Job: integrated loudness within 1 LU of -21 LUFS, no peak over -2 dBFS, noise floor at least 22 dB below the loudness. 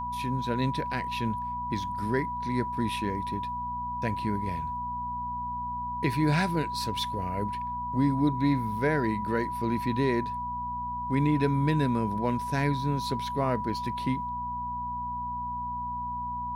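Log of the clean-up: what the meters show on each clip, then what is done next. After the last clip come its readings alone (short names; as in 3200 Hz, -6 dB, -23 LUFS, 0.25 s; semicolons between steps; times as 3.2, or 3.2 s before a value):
hum 60 Hz; harmonics up to 240 Hz; hum level -40 dBFS; steady tone 980 Hz; tone level -31 dBFS; loudness -29.5 LUFS; peak -14.0 dBFS; loudness target -21.0 LUFS
-> de-hum 60 Hz, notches 4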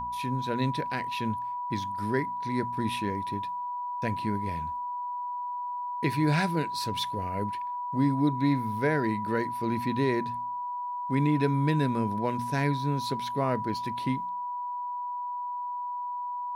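hum none; steady tone 980 Hz; tone level -31 dBFS
-> notch 980 Hz, Q 30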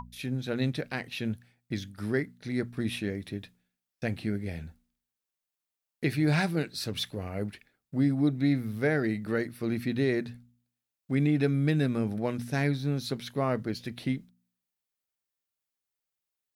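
steady tone none; loudness -30.5 LUFS; peak -14.5 dBFS; loudness target -21.0 LUFS
-> gain +9.5 dB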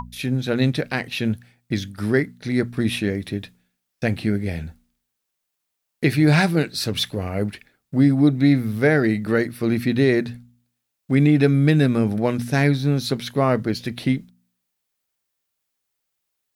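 loudness -21.0 LUFS; peak -5.0 dBFS; noise floor -79 dBFS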